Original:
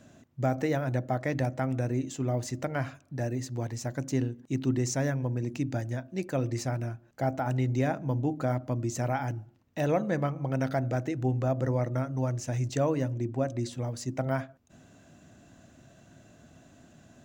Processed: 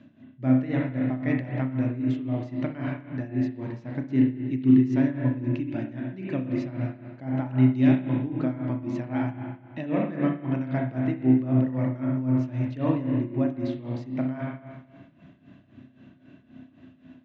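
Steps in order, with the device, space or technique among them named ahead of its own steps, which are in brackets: 7.66–8.1 band shelf 4600 Hz +8.5 dB; combo amplifier with spring reverb and tremolo (spring tank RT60 1.5 s, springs 31/58 ms, chirp 65 ms, DRR -0.5 dB; tremolo 3.8 Hz, depth 78%; speaker cabinet 90–3400 Hz, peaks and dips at 270 Hz +7 dB, 480 Hz -9 dB, 750 Hz -9 dB, 1400 Hz -7 dB); gain +2.5 dB

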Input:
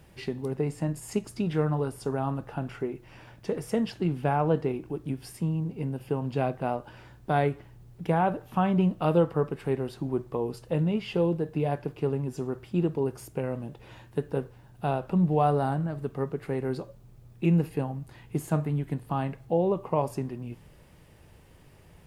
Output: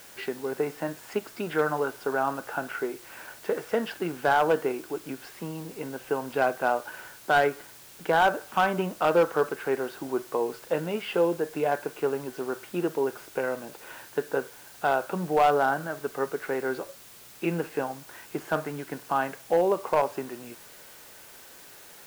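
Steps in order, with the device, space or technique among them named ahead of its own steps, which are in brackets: drive-through speaker (BPF 430–3100 Hz; bell 1500 Hz +10 dB 0.3 oct; hard clip -20.5 dBFS, distortion -17 dB; white noise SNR 21 dB); gain +5.5 dB

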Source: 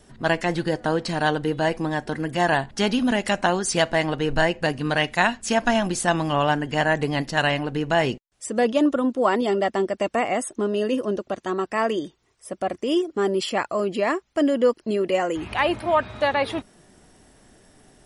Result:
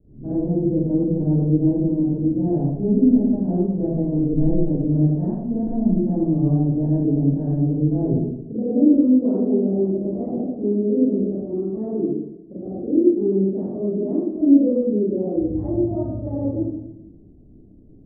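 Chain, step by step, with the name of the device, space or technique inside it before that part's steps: next room (LPF 370 Hz 24 dB/oct; reverb RT60 0.85 s, pre-delay 35 ms, DRR -10.5 dB); gain -3.5 dB

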